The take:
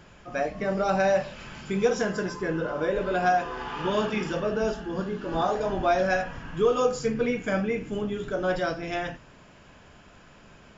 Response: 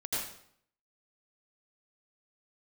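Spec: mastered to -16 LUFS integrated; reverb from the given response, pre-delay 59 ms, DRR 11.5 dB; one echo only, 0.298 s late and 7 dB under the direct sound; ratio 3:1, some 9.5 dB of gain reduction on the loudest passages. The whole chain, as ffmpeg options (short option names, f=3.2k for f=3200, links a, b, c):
-filter_complex "[0:a]acompressor=threshold=-31dB:ratio=3,aecho=1:1:298:0.447,asplit=2[a][b];[1:a]atrim=start_sample=2205,adelay=59[c];[b][c]afir=irnorm=-1:irlink=0,volume=-16.5dB[d];[a][d]amix=inputs=2:normalize=0,volume=16.5dB"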